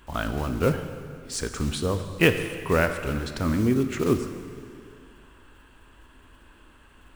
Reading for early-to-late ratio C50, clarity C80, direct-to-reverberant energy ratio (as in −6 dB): 8.5 dB, 9.5 dB, 7.5 dB